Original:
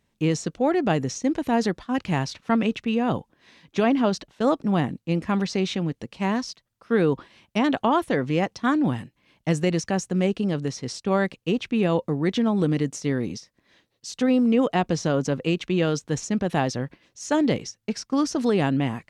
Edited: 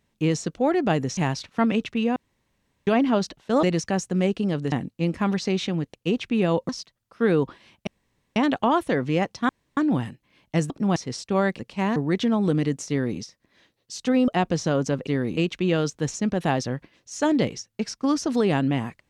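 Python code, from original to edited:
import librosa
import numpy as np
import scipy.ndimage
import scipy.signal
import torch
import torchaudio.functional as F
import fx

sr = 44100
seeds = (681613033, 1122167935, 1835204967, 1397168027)

y = fx.edit(x, sr, fx.cut(start_s=1.17, length_s=0.91),
    fx.room_tone_fill(start_s=3.07, length_s=0.71),
    fx.swap(start_s=4.54, length_s=0.26, other_s=9.63, other_length_s=1.09),
    fx.swap(start_s=6.02, length_s=0.37, other_s=11.35, other_length_s=0.75),
    fx.insert_room_tone(at_s=7.57, length_s=0.49),
    fx.insert_room_tone(at_s=8.7, length_s=0.28),
    fx.duplicate(start_s=13.03, length_s=0.3, to_s=15.46),
    fx.cut(start_s=14.42, length_s=0.25), tone=tone)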